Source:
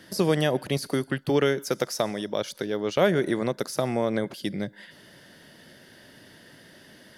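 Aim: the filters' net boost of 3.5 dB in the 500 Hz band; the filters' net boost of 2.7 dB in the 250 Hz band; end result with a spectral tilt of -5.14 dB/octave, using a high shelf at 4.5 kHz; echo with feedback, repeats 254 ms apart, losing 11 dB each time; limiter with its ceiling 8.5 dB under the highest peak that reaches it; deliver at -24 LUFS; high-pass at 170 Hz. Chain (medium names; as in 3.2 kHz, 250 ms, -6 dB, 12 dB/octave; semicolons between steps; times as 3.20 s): high-pass 170 Hz; peaking EQ 250 Hz +3.5 dB; peaking EQ 500 Hz +3.5 dB; treble shelf 4.5 kHz -7 dB; peak limiter -15.5 dBFS; feedback delay 254 ms, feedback 28%, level -11 dB; trim +3 dB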